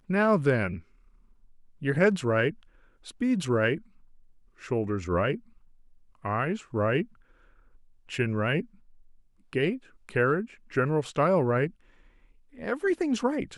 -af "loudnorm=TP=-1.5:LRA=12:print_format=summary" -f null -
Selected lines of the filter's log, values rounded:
Input Integrated:    -27.5 LUFS
Input True Peak:     -10.8 dBTP
Input LRA:             3.6 LU
Input Threshold:     -38.9 LUFS